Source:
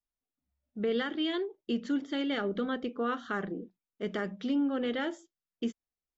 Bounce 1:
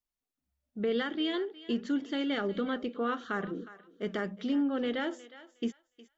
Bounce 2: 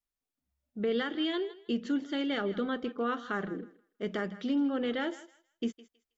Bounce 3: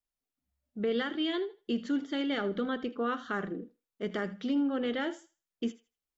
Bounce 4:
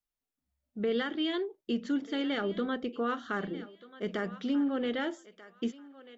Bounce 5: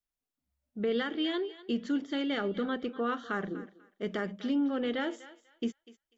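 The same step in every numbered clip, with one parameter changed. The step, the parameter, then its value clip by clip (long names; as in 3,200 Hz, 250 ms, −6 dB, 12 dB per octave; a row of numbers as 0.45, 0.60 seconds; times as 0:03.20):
feedback echo with a high-pass in the loop, delay time: 362, 160, 79, 1,238, 246 milliseconds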